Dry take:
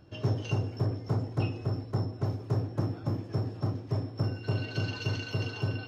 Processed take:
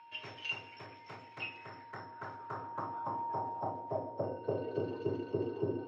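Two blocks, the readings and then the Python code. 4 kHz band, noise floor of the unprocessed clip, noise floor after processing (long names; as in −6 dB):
−5.5 dB, −43 dBFS, −54 dBFS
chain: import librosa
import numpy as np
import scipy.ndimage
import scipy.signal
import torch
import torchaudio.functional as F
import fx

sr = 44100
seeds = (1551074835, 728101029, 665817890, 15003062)

y = x + 10.0 ** (-44.0 / 20.0) * np.sin(2.0 * np.pi * 930.0 * np.arange(len(x)) / sr)
y = fx.filter_sweep_bandpass(y, sr, from_hz=2400.0, to_hz=380.0, start_s=1.33, end_s=5.09, q=3.6)
y = y * librosa.db_to_amplitude(8.5)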